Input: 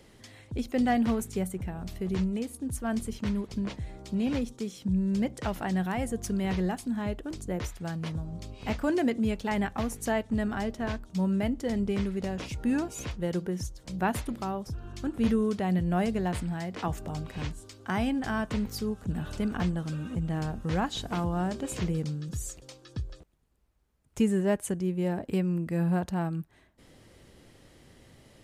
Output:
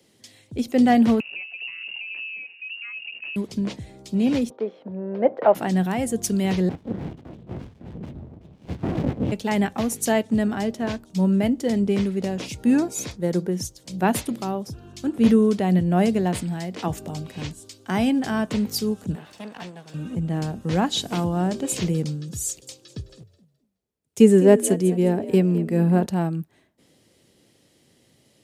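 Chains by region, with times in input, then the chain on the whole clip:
1.2–3.36 compressor, threshold -36 dBFS + inverted band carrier 2800 Hz
4.5–5.55 EQ curve 160 Hz 0 dB, 1500 Hz +14 dB, 4500 Hz +4 dB, 8000 Hz -16 dB + sample leveller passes 1 + band-pass 600 Hz, Q 2
6.69–9.32 LPC vocoder at 8 kHz whisper + running maximum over 65 samples
12.78–13.47 bell 2900 Hz -10.5 dB 0.26 oct + mismatched tape noise reduction decoder only
19.15–19.94 minimum comb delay 1.1 ms + HPF 800 Hz 6 dB/oct + high shelf 4500 Hz -10 dB
22.46–26.06 bell 420 Hz +6.5 dB 0.31 oct + frequency-shifting echo 0.211 s, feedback 32%, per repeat +51 Hz, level -14 dB
whole clip: HPF 150 Hz 12 dB/oct; bell 1300 Hz -6.5 dB 1.6 oct; three-band expander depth 40%; gain +9 dB

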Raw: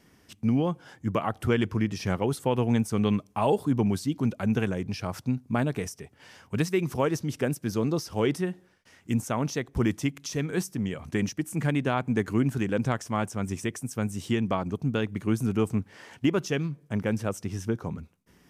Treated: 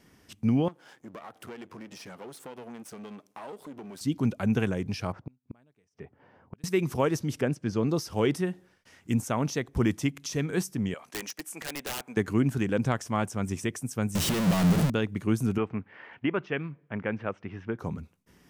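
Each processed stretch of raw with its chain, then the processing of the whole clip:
0.68–4.01 half-wave gain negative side -12 dB + HPF 250 Hz + compressor 3:1, threshold -42 dBFS
5.12–6.64 low-pass opened by the level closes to 710 Hz, open at -23.5 dBFS + low shelf 110 Hz -6 dB + flipped gate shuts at -28 dBFS, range -36 dB
7.41–7.89 air absorption 94 m + notch 3800 Hz, Q 14
10.94–12.17 HPF 600 Hz + wrapped overs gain 27 dB
14.15–14.9 infinite clipping + bell 170 Hz +13 dB 0.33 oct
15.58–17.79 LPF 2400 Hz 24 dB/oct + tilt +2.5 dB/oct
whole clip: dry

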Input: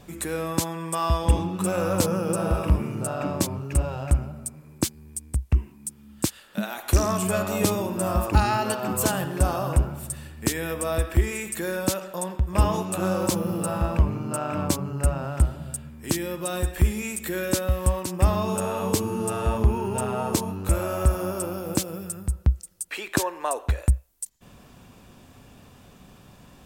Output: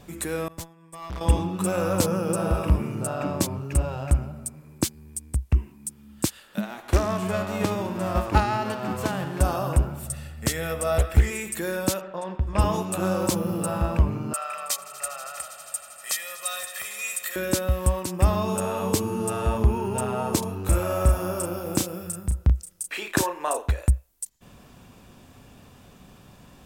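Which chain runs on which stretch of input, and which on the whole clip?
0.48–1.21 low shelf 120 Hz +10 dB + expander -18 dBFS + tube stage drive 31 dB, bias 0.35
6.59–9.4 spectral whitening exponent 0.6 + LPF 1300 Hz 6 dB/oct
10.06–11.3 comb 1.5 ms, depth 54% + Doppler distortion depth 0.79 ms
12.01–12.64 notches 60/120/180/240/300/360/420 Hz + low-pass opened by the level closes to 1900 Hz, open at -16.5 dBFS
14.33–17.36 HPF 1300 Hz + comb 1.6 ms, depth 91% + swelling echo 80 ms, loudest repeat 5, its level -18 dB
20.39–23.67 notch 4300 Hz, Q 27 + doubler 34 ms -5.5 dB
whole clip: dry

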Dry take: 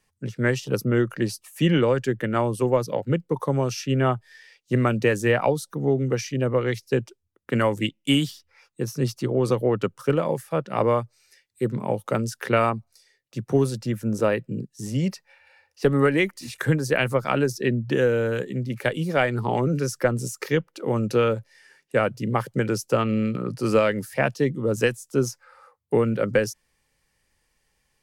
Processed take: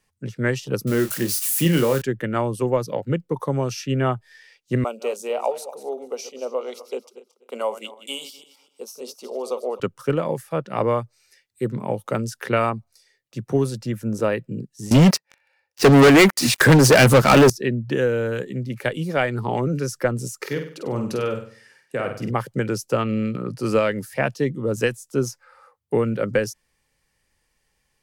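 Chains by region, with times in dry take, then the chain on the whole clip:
0.87–2.02 switching spikes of -20 dBFS + doubler 30 ms -8.5 dB
4.84–9.8 regenerating reverse delay 0.124 s, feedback 43%, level -12.5 dB + elliptic high-pass 250 Hz, stop band 50 dB + fixed phaser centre 720 Hz, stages 4
14.91–17.5 HPF 120 Hz + sample leveller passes 5
20.42–22.31 HPF 56 Hz + compressor 3:1, threshold -22 dBFS + flutter echo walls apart 8.4 m, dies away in 0.47 s
whole clip: dry

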